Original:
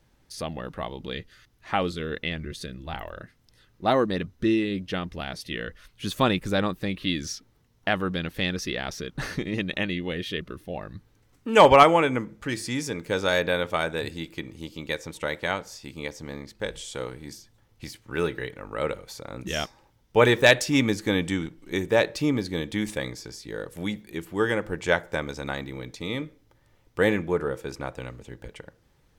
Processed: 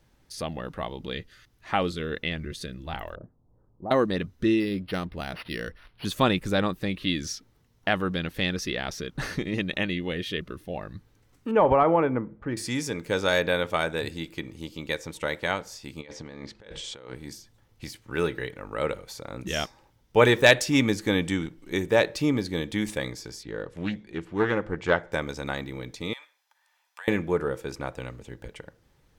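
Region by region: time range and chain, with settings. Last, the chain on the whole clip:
0:03.15–0:03.91: Butterworth low-pass 1,000 Hz + downward compressor 2 to 1, threshold −38 dBFS
0:04.60–0:06.05: high-shelf EQ 7,700 Hz +5 dB + linearly interpolated sample-rate reduction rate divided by 6×
0:11.51–0:12.57: low-pass filter 1,200 Hz + downward compressor 4 to 1, threshold −15 dBFS
0:16.01–0:17.15: low-pass filter 5,000 Hz + low-shelf EQ 90 Hz −8 dB + compressor whose output falls as the input rises −42 dBFS
0:23.43–0:25.12: low-pass filter 6,300 Hz + high-shelf EQ 3,900 Hz −7 dB + highs frequency-modulated by the lows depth 0.21 ms
0:26.13–0:27.08: high-pass filter 880 Hz 24 dB per octave + comb filter 1.2 ms, depth 38% + downward compressor, threshold −39 dBFS
whole clip: no processing

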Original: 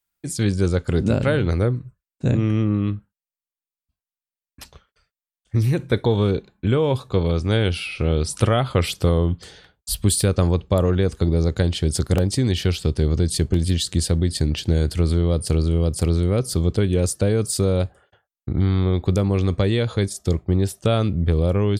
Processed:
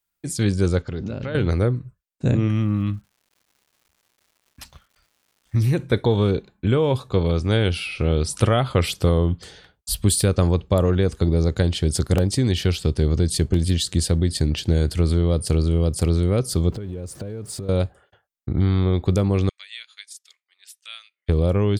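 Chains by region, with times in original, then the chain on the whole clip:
0:00.82–0:01.35: elliptic low-pass filter 6,300 Hz, stop band 50 dB + downward compressor 5 to 1, threshold −25 dBFS
0:02.47–0:05.60: parametric band 420 Hz −14.5 dB 0.51 octaves + surface crackle 310 per second −50 dBFS
0:16.72–0:17.69: converter with a step at zero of −34.5 dBFS + high-shelf EQ 2,000 Hz −10.5 dB + downward compressor 10 to 1, threshold −27 dBFS
0:19.49–0:21.29: four-pole ladder high-pass 1,800 Hz, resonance 30% + expander for the loud parts, over −58 dBFS
whole clip: no processing

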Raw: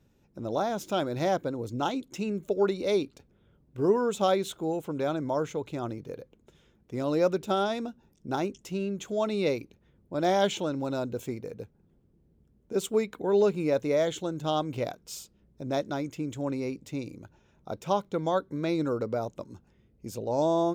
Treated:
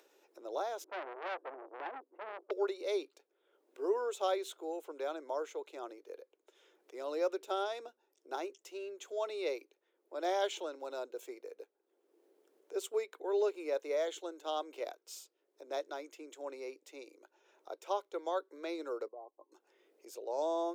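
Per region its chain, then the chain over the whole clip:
0:00.84–0:02.51: low-pass filter 1,100 Hz 24 dB per octave + low-shelf EQ 140 Hz +10.5 dB + saturating transformer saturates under 1,600 Hz
0:19.08–0:19.52: Chebyshev low-pass with heavy ripple 1,100 Hz, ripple 9 dB + parametric band 130 Hz −14.5 dB 2.6 octaves
whole clip: Butterworth high-pass 350 Hz 48 dB per octave; upward compression, threshold −47 dBFS; level −8 dB

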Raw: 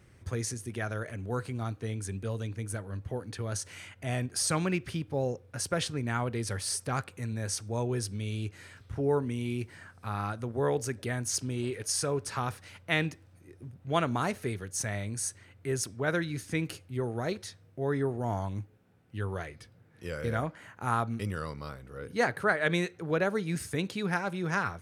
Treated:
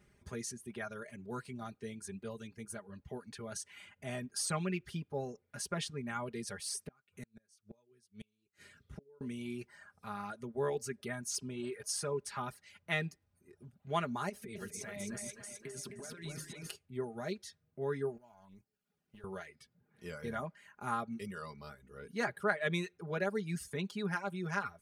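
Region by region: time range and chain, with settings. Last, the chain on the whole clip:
0:06.82–0:09.21: parametric band 920 Hz −7.5 dB 0.8 octaves + gate with flip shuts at −26 dBFS, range −27 dB
0:14.29–0:16.71: low-shelf EQ 140 Hz −4.5 dB + compressor whose output falls as the input rises −38 dBFS + echo with a time of its own for lows and highs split 370 Hz, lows 127 ms, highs 261 ms, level −3.5 dB
0:18.17–0:19.24: mu-law and A-law mismatch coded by A + downward compressor 12 to 1, threshold −42 dBFS
whole clip: reverb reduction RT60 0.67 s; comb filter 4.9 ms, depth 74%; level −8 dB

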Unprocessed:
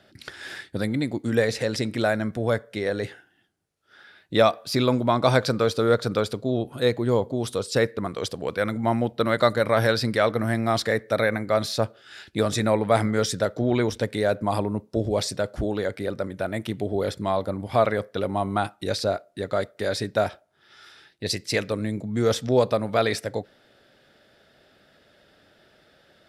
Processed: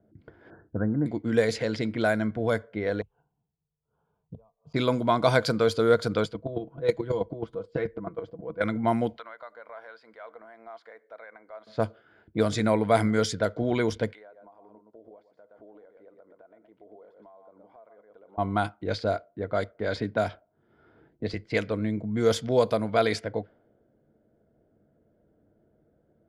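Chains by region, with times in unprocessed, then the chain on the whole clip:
0:00.50–0:01.06: Butterworth low-pass 1,700 Hz 96 dB per octave + low-shelf EQ 61 Hz +9.5 dB
0:03.01–0:04.74: EQ curve with evenly spaced ripples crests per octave 0.73, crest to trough 12 dB + gate with flip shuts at −19 dBFS, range −33 dB + phaser with its sweep stopped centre 830 Hz, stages 4
0:06.24–0:08.63: comb filter 6.1 ms, depth 61% + square-wave tremolo 9.3 Hz, depth 65%, duty 15%
0:09.16–0:11.67: high-pass filter 810 Hz + spectral tilt +3 dB per octave + downward compressor 2.5 to 1, threshold −36 dBFS
0:14.12–0:18.38: high-pass filter 890 Hz + single-tap delay 119 ms −10 dB + downward compressor 12 to 1, threshold −40 dBFS
0:19.95–0:21.34: running median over 3 samples + parametric band 250 Hz +5 dB 0.33 octaves + multiband upward and downward compressor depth 40%
whole clip: low-pass that shuts in the quiet parts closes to 410 Hz, open at −18 dBFS; EQ curve with evenly spaced ripples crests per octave 1.8, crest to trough 6 dB; level −2.5 dB

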